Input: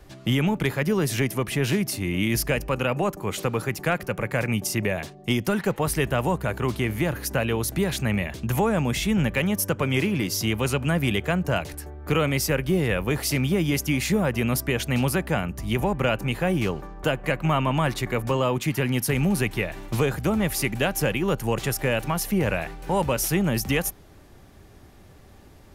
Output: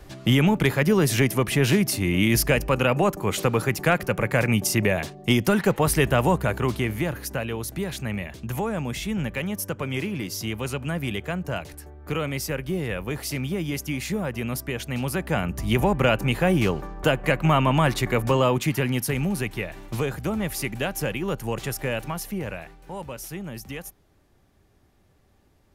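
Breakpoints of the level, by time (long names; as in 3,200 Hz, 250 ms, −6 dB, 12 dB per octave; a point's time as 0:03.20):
0:06.35 +3.5 dB
0:07.50 −5 dB
0:15.01 −5 dB
0:15.54 +3 dB
0:18.45 +3 dB
0:19.33 −3.5 dB
0:21.97 −3.5 dB
0:22.91 −12 dB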